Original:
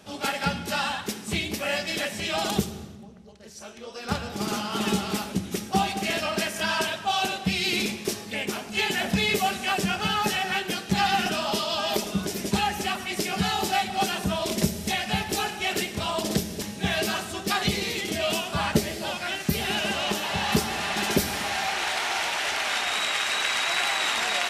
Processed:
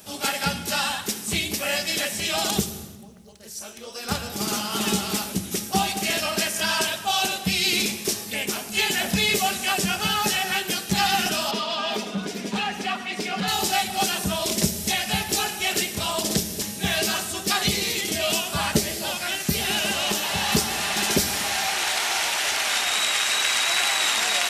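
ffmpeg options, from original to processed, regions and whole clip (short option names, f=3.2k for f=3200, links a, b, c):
-filter_complex "[0:a]asettb=1/sr,asplit=3[a][b][c];[a]atrim=end=11.514[d];[b]atrim=start=11.51:end=13.48,asetpts=PTS-STARTPTS,afade=t=in:d=0.004:c=qsin,afade=t=out:st=1.966:d=0.004:c=qsin,aecho=1:1:4.2:0.46,atrim=end_sample=86877,asoftclip=type=hard:threshold=-21dB,highpass=150,lowpass=3.2k[e];[c]atrim=start=13.476[f];[d][e]acrossfade=d=0.004:c1=hsin:c2=qsin[g];[g][f]acrossfade=d=0.004:c1=qsin:c2=hsin,aemphasis=mode=production:type=50kf,acrossover=split=8300[h][i];[i]acompressor=threshold=-41dB:ratio=4:attack=1:release=60[j];[h][j]amix=inputs=2:normalize=0,highshelf=f=10k:g=9"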